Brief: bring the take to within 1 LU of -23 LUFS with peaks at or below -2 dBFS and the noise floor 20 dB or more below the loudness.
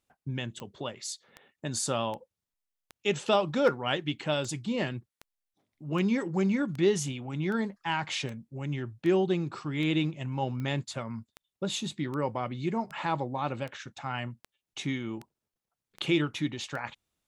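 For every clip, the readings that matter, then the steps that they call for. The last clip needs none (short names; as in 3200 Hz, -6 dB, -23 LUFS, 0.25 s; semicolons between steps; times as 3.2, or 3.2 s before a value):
clicks 22; loudness -31.0 LUFS; peak -12.5 dBFS; loudness target -23.0 LUFS
-> de-click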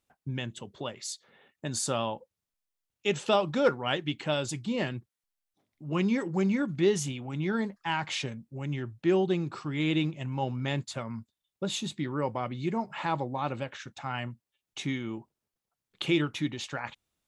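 clicks 0; loudness -31.0 LUFS; peak -12.5 dBFS; loudness target -23.0 LUFS
-> gain +8 dB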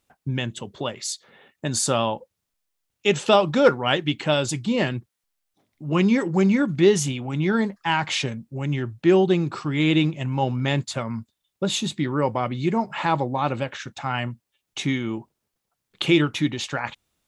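loudness -23.0 LUFS; peak -4.5 dBFS; noise floor -81 dBFS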